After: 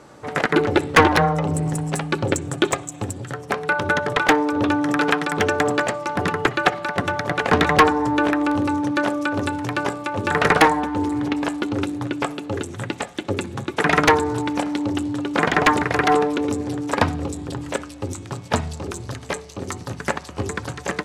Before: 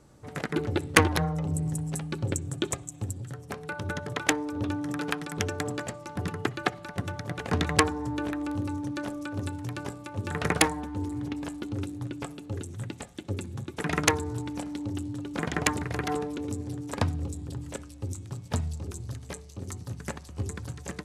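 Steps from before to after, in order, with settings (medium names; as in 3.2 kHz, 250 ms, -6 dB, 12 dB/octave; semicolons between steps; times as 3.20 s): overdrive pedal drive 24 dB, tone 2.1 kHz, clips at -1 dBFS; trim +1 dB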